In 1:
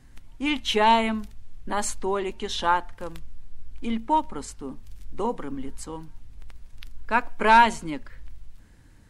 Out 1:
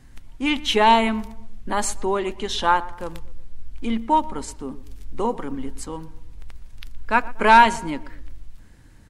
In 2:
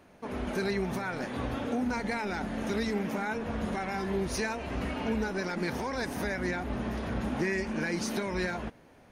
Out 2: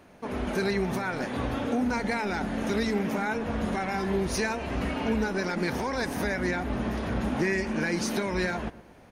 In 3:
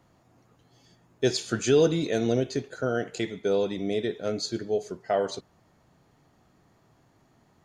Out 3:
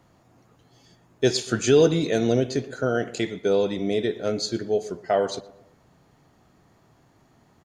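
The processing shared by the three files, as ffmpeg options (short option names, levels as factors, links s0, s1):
-filter_complex "[0:a]asplit=2[s0][s1];[s1]adelay=119,lowpass=f=1700:p=1,volume=0.133,asplit=2[s2][s3];[s3]adelay=119,lowpass=f=1700:p=1,volume=0.47,asplit=2[s4][s5];[s5]adelay=119,lowpass=f=1700:p=1,volume=0.47,asplit=2[s6][s7];[s7]adelay=119,lowpass=f=1700:p=1,volume=0.47[s8];[s0][s2][s4][s6][s8]amix=inputs=5:normalize=0,volume=1.5"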